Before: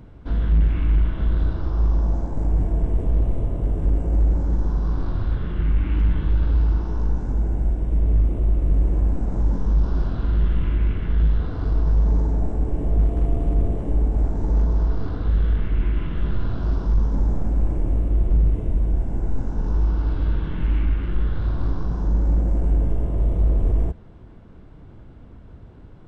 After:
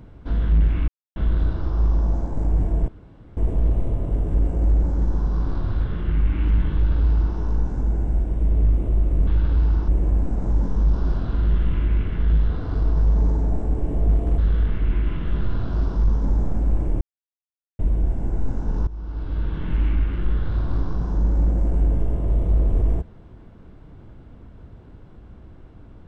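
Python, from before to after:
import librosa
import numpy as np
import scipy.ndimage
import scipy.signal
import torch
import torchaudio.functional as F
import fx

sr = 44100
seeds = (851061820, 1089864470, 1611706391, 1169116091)

y = fx.edit(x, sr, fx.silence(start_s=0.88, length_s=0.28),
    fx.insert_room_tone(at_s=2.88, length_s=0.49),
    fx.duplicate(start_s=6.25, length_s=0.61, to_s=8.78),
    fx.cut(start_s=13.28, length_s=2.0),
    fx.silence(start_s=17.91, length_s=0.78),
    fx.fade_in_from(start_s=19.77, length_s=0.81, floor_db=-18.5), tone=tone)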